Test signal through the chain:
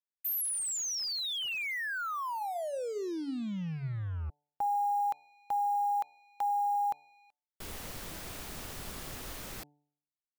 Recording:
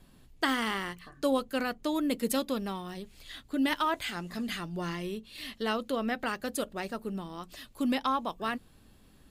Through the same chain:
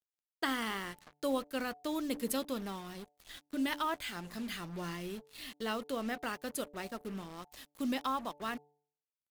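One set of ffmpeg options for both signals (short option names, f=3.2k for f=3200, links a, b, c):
-af "highshelf=f=11k:g=5,acrusher=bits=6:mix=0:aa=0.5,bandreject=f=146.2:t=h:w=4,bandreject=f=292.4:t=h:w=4,bandreject=f=438.6:t=h:w=4,bandreject=f=584.8:t=h:w=4,bandreject=f=731:t=h:w=4,bandreject=f=877.2:t=h:w=4,volume=-5.5dB"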